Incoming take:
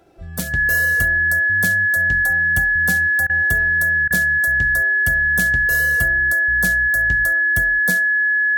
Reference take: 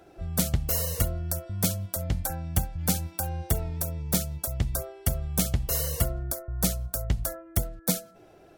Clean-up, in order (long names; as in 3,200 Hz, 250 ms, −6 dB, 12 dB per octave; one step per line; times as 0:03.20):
notch filter 1,700 Hz, Q 30
repair the gap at 0:03.27/0:04.08, 25 ms